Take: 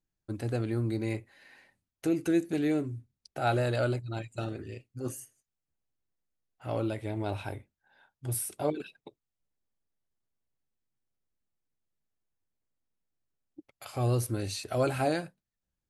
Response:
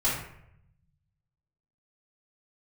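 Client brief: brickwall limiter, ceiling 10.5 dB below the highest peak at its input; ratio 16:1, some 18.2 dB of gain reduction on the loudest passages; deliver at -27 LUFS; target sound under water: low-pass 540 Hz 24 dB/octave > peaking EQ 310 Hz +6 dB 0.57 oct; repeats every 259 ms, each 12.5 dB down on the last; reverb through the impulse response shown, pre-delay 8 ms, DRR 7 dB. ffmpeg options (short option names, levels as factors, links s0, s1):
-filter_complex "[0:a]acompressor=threshold=0.00891:ratio=16,alimiter=level_in=5.31:limit=0.0631:level=0:latency=1,volume=0.188,aecho=1:1:259|518|777:0.237|0.0569|0.0137,asplit=2[s0][s1];[1:a]atrim=start_sample=2205,adelay=8[s2];[s1][s2]afir=irnorm=-1:irlink=0,volume=0.133[s3];[s0][s3]amix=inputs=2:normalize=0,lowpass=f=540:w=0.5412,lowpass=f=540:w=1.3066,equalizer=f=310:t=o:w=0.57:g=6,volume=9.44"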